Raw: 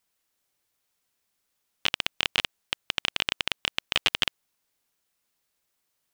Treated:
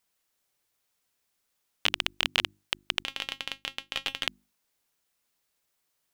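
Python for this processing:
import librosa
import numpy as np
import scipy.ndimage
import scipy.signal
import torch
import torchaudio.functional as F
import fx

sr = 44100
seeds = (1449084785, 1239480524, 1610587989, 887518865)

y = fx.hum_notches(x, sr, base_hz=50, count=7)
y = fx.comb_fb(y, sr, f0_hz=270.0, decay_s=0.16, harmonics='all', damping=0.0, mix_pct=70, at=(3.03, 4.27))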